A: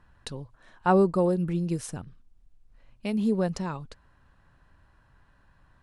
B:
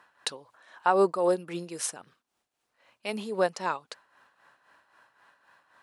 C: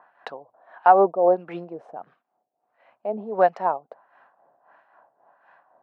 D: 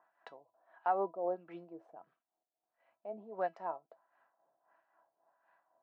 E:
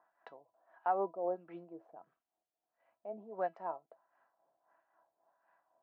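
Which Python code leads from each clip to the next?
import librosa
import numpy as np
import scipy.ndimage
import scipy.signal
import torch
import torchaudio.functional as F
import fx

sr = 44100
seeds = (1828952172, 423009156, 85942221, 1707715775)

y1 = scipy.signal.sosfilt(scipy.signal.butter(2, 570.0, 'highpass', fs=sr, output='sos'), x)
y1 = y1 * (1.0 - 0.64 / 2.0 + 0.64 / 2.0 * np.cos(2.0 * np.pi * 3.8 * (np.arange(len(y1)) / sr)))
y1 = y1 * librosa.db_to_amplitude(8.5)
y2 = scipy.signal.sosfilt(scipy.signal.butter(4, 130.0, 'highpass', fs=sr, output='sos'), y1)
y2 = fx.peak_eq(y2, sr, hz=710.0, db=13.5, octaves=0.58)
y2 = fx.filter_lfo_lowpass(y2, sr, shape='sine', hz=1.5, low_hz=540.0, high_hz=2200.0, q=1.2)
y3 = fx.comb_fb(y2, sr, f0_hz=330.0, decay_s=0.16, harmonics='all', damping=0.0, mix_pct=70)
y3 = y3 * librosa.db_to_amplitude(-8.5)
y4 = fx.high_shelf(y3, sr, hz=3400.0, db=-11.5)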